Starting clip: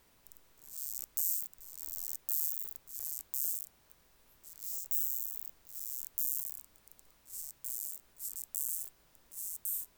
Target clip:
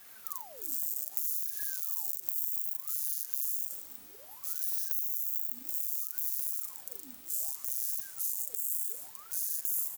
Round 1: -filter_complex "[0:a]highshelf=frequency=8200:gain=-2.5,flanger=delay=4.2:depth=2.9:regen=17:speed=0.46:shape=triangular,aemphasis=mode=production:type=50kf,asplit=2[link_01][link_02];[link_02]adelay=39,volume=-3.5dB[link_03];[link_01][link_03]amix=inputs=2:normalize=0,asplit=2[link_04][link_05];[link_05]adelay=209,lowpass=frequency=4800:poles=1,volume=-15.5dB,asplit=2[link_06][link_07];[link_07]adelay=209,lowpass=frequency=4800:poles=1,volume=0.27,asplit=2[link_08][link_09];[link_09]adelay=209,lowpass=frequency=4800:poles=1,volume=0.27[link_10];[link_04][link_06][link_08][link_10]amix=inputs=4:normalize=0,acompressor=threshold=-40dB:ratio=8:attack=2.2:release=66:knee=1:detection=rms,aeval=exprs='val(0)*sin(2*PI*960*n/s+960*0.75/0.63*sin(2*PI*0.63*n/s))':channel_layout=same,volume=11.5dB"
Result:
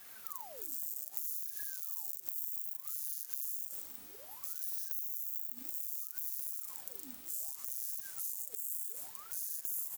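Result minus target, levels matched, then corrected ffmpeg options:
downward compressor: peak gain reduction +6 dB
-filter_complex "[0:a]highshelf=frequency=8200:gain=-2.5,flanger=delay=4.2:depth=2.9:regen=17:speed=0.46:shape=triangular,aemphasis=mode=production:type=50kf,asplit=2[link_01][link_02];[link_02]adelay=39,volume=-3.5dB[link_03];[link_01][link_03]amix=inputs=2:normalize=0,asplit=2[link_04][link_05];[link_05]adelay=209,lowpass=frequency=4800:poles=1,volume=-15.5dB,asplit=2[link_06][link_07];[link_07]adelay=209,lowpass=frequency=4800:poles=1,volume=0.27,asplit=2[link_08][link_09];[link_09]adelay=209,lowpass=frequency=4800:poles=1,volume=0.27[link_10];[link_04][link_06][link_08][link_10]amix=inputs=4:normalize=0,acompressor=threshold=-33dB:ratio=8:attack=2.2:release=66:knee=1:detection=rms,aeval=exprs='val(0)*sin(2*PI*960*n/s+960*0.75/0.63*sin(2*PI*0.63*n/s))':channel_layout=same,volume=11.5dB"

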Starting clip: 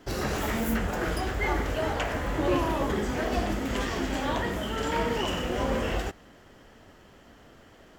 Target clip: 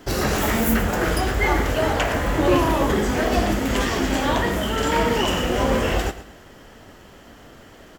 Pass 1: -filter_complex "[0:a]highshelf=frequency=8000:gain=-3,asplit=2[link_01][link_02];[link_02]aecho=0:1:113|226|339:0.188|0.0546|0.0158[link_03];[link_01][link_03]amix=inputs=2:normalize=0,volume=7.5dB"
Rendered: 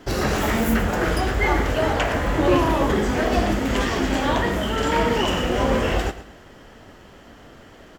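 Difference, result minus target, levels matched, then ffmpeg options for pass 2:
8,000 Hz band −3.5 dB
-filter_complex "[0:a]highshelf=frequency=8000:gain=5.5,asplit=2[link_01][link_02];[link_02]aecho=0:1:113|226|339:0.188|0.0546|0.0158[link_03];[link_01][link_03]amix=inputs=2:normalize=0,volume=7.5dB"

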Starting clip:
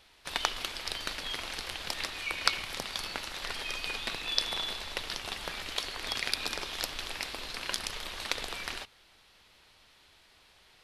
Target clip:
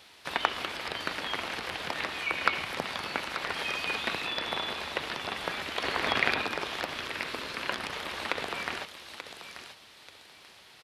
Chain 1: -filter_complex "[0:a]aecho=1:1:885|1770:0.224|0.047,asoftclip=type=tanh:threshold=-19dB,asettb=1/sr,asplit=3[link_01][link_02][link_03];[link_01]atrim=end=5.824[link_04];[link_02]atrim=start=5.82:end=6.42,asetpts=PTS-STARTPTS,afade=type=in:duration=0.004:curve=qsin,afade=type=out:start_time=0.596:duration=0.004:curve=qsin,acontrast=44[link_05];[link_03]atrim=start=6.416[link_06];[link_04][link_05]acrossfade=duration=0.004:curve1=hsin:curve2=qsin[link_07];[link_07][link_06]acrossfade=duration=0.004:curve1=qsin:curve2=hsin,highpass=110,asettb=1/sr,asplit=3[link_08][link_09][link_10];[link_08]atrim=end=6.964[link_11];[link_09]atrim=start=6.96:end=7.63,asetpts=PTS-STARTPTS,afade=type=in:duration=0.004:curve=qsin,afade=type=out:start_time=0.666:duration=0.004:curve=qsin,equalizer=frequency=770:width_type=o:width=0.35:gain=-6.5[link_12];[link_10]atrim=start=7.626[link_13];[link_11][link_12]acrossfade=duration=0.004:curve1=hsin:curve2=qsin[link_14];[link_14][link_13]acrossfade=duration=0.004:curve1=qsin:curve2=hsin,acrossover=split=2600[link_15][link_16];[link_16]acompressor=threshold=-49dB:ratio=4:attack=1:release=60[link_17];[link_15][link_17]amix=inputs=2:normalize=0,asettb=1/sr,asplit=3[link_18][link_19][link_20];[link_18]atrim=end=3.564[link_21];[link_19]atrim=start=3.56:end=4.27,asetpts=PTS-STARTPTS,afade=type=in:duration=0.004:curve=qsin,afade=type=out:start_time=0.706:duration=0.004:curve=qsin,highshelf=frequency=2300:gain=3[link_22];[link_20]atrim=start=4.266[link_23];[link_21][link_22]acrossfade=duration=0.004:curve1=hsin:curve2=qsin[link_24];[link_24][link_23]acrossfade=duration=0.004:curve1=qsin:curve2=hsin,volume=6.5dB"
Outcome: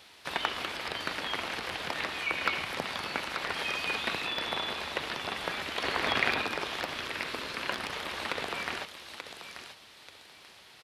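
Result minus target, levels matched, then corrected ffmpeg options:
soft clipping: distortion +9 dB
-filter_complex "[0:a]aecho=1:1:885|1770:0.224|0.047,asoftclip=type=tanh:threshold=-8.5dB,asettb=1/sr,asplit=3[link_01][link_02][link_03];[link_01]atrim=end=5.824[link_04];[link_02]atrim=start=5.82:end=6.42,asetpts=PTS-STARTPTS,afade=type=in:duration=0.004:curve=qsin,afade=type=out:start_time=0.596:duration=0.004:curve=qsin,acontrast=44[link_05];[link_03]atrim=start=6.416[link_06];[link_04][link_05]acrossfade=duration=0.004:curve1=hsin:curve2=qsin[link_07];[link_07][link_06]acrossfade=duration=0.004:curve1=qsin:curve2=hsin,highpass=110,asettb=1/sr,asplit=3[link_08][link_09][link_10];[link_08]atrim=end=6.964[link_11];[link_09]atrim=start=6.96:end=7.63,asetpts=PTS-STARTPTS,afade=type=in:duration=0.004:curve=qsin,afade=type=out:start_time=0.666:duration=0.004:curve=qsin,equalizer=frequency=770:width_type=o:width=0.35:gain=-6.5[link_12];[link_10]atrim=start=7.626[link_13];[link_11][link_12]acrossfade=duration=0.004:curve1=hsin:curve2=qsin[link_14];[link_14][link_13]acrossfade=duration=0.004:curve1=qsin:curve2=hsin,acrossover=split=2600[link_15][link_16];[link_16]acompressor=threshold=-49dB:ratio=4:attack=1:release=60[link_17];[link_15][link_17]amix=inputs=2:normalize=0,asettb=1/sr,asplit=3[link_18][link_19][link_20];[link_18]atrim=end=3.564[link_21];[link_19]atrim=start=3.56:end=4.27,asetpts=PTS-STARTPTS,afade=type=in:duration=0.004:curve=qsin,afade=type=out:start_time=0.706:duration=0.004:curve=qsin,highshelf=frequency=2300:gain=3[link_22];[link_20]atrim=start=4.266[link_23];[link_21][link_22]acrossfade=duration=0.004:curve1=hsin:curve2=qsin[link_24];[link_24][link_23]acrossfade=duration=0.004:curve1=qsin:curve2=hsin,volume=6.5dB"

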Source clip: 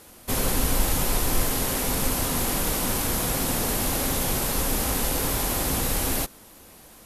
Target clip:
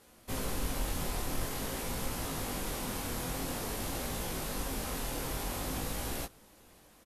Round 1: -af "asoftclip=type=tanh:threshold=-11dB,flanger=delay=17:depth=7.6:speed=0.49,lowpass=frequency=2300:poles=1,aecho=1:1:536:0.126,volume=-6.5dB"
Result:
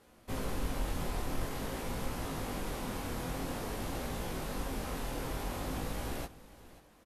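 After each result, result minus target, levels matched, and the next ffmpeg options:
echo-to-direct +11 dB; 8,000 Hz band −5.5 dB
-af "asoftclip=type=tanh:threshold=-11dB,flanger=delay=17:depth=7.6:speed=0.49,lowpass=frequency=2300:poles=1,aecho=1:1:536:0.0355,volume=-6.5dB"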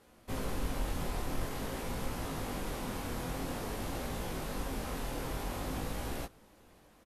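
8,000 Hz band −5.5 dB
-af "asoftclip=type=tanh:threshold=-11dB,flanger=delay=17:depth=7.6:speed=0.49,lowpass=frequency=7100:poles=1,aecho=1:1:536:0.0355,volume=-6.5dB"

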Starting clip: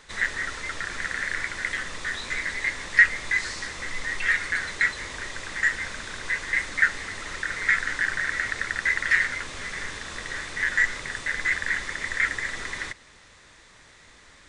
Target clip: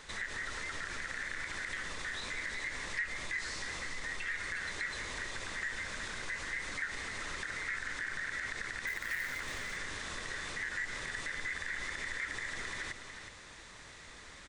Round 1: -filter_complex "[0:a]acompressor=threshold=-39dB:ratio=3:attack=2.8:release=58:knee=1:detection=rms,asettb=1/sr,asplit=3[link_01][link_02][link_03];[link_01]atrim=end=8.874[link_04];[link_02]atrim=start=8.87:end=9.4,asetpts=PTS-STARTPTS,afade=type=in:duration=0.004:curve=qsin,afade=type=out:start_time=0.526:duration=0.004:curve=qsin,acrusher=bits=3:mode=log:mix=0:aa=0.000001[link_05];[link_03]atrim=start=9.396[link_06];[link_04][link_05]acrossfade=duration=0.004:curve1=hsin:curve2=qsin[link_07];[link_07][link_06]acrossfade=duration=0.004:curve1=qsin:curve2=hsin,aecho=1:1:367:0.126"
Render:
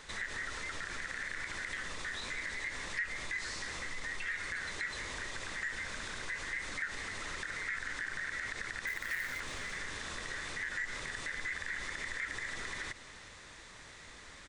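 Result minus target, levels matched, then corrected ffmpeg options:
echo-to-direct −9 dB
-filter_complex "[0:a]acompressor=threshold=-39dB:ratio=3:attack=2.8:release=58:knee=1:detection=rms,asettb=1/sr,asplit=3[link_01][link_02][link_03];[link_01]atrim=end=8.874[link_04];[link_02]atrim=start=8.87:end=9.4,asetpts=PTS-STARTPTS,afade=type=in:duration=0.004:curve=qsin,afade=type=out:start_time=0.526:duration=0.004:curve=qsin,acrusher=bits=3:mode=log:mix=0:aa=0.000001[link_05];[link_03]atrim=start=9.396[link_06];[link_04][link_05]acrossfade=duration=0.004:curve1=hsin:curve2=qsin[link_07];[link_07][link_06]acrossfade=duration=0.004:curve1=qsin:curve2=hsin,aecho=1:1:367:0.355"

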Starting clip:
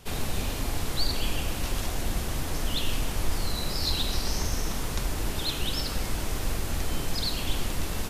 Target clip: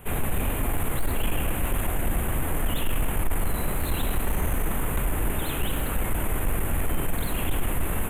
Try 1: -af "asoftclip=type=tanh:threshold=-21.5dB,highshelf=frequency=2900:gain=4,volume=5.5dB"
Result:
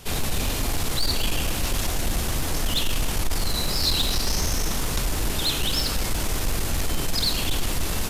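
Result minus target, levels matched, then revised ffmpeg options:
4,000 Hz band +11.0 dB
-af "asoftclip=type=tanh:threshold=-21.5dB,asuperstop=centerf=5100:order=4:qfactor=0.68,highshelf=frequency=2900:gain=4,volume=5.5dB"

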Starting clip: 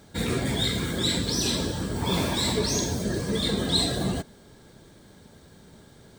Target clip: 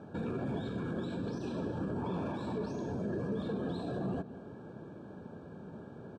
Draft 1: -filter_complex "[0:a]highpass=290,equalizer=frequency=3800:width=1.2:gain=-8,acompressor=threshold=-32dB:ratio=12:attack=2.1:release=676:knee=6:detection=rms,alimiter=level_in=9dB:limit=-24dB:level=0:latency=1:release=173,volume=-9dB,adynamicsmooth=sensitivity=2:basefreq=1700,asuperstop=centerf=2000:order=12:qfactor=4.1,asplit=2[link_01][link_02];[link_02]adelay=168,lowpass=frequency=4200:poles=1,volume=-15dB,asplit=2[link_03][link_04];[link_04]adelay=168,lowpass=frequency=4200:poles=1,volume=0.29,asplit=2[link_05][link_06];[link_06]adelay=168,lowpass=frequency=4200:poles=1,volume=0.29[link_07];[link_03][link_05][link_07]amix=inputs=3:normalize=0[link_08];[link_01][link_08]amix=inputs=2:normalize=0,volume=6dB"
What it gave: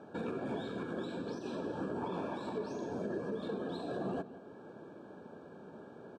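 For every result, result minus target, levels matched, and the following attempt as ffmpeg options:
downward compressor: peak gain reduction +12.5 dB; 125 Hz band −6.5 dB
-filter_complex "[0:a]highpass=290,equalizer=frequency=3800:width=1.2:gain=-8,alimiter=level_in=9dB:limit=-24dB:level=0:latency=1:release=173,volume=-9dB,adynamicsmooth=sensitivity=2:basefreq=1700,asuperstop=centerf=2000:order=12:qfactor=4.1,asplit=2[link_01][link_02];[link_02]adelay=168,lowpass=frequency=4200:poles=1,volume=-15dB,asplit=2[link_03][link_04];[link_04]adelay=168,lowpass=frequency=4200:poles=1,volume=0.29,asplit=2[link_05][link_06];[link_06]adelay=168,lowpass=frequency=4200:poles=1,volume=0.29[link_07];[link_03][link_05][link_07]amix=inputs=3:normalize=0[link_08];[link_01][link_08]amix=inputs=2:normalize=0,volume=6dB"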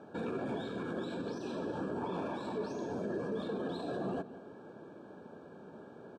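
125 Hz band −6.5 dB
-filter_complex "[0:a]highpass=130,equalizer=frequency=3800:width=1.2:gain=-8,alimiter=level_in=9dB:limit=-24dB:level=0:latency=1:release=173,volume=-9dB,adynamicsmooth=sensitivity=2:basefreq=1700,asuperstop=centerf=2000:order=12:qfactor=4.1,asplit=2[link_01][link_02];[link_02]adelay=168,lowpass=frequency=4200:poles=1,volume=-15dB,asplit=2[link_03][link_04];[link_04]adelay=168,lowpass=frequency=4200:poles=1,volume=0.29,asplit=2[link_05][link_06];[link_06]adelay=168,lowpass=frequency=4200:poles=1,volume=0.29[link_07];[link_03][link_05][link_07]amix=inputs=3:normalize=0[link_08];[link_01][link_08]amix=inputs=2:normalize=0,volume=6dB"

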